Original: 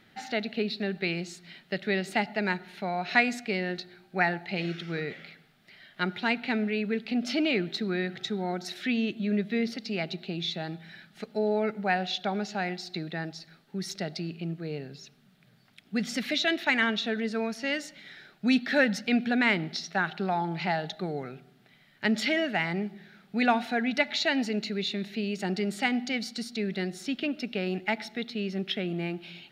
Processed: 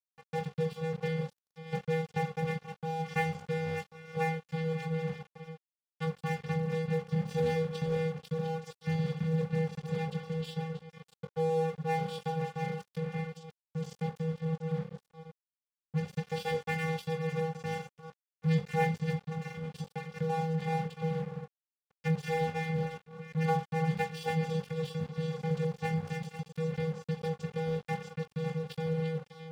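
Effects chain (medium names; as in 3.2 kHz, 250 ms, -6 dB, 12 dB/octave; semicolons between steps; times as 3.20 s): chunks repeated in reverse 348 ms, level -8.5 dB; 19.10–20.15 s: compression 8:1, threshold -29 dBFS, peak gain reduction 10.5 dB; bass shelf 420 Hz +3 dB; vocoder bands 8, square 161 Hz; crossover distortion -53.5 dBFS; peaking EQ 250 Hz +3 dB 0.23 oct; flutter echo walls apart 3.6 m, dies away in 0.24 s; waveshaping leveller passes 1; crossover distortion -37.5 dBFS; trim -4 dB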